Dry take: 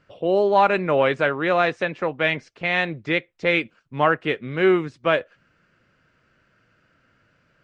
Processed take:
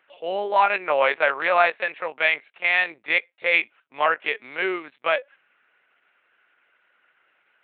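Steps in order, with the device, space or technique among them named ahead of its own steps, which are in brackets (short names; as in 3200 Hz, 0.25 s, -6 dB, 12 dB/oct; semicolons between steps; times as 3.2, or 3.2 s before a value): talking toy (LPC vocoder at 8 kHz pitch kept; HPF 660 Hz 12 dB/oct; bell 2300 Hz +5 dB 0.5 oct); 0.85–1.7 dynamic EQ 890 Hz, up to +5 dB, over -31 dBFS, Q 0.77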